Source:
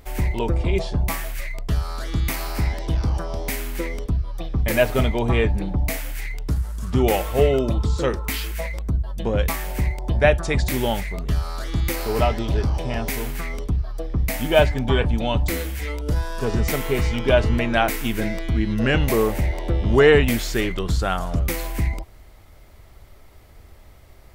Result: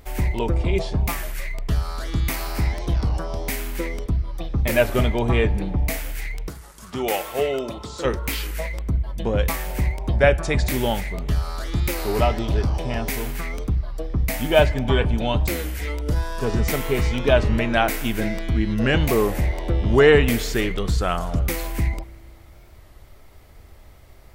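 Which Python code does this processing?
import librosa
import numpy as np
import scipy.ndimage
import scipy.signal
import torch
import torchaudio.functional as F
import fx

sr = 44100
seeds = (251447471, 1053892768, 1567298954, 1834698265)

y = fx.highpass(x, sr, hz=600.0, slope=6, at=(6.49, 8.05))
y = fx.rev_spring(y, sr, rt60_s=2.4, pass_ms=(33,), chirp_ms=55, drr_db=19.5)
y = fx.record_warp(y, sr, rpm=33.33, depth_cents=100.0)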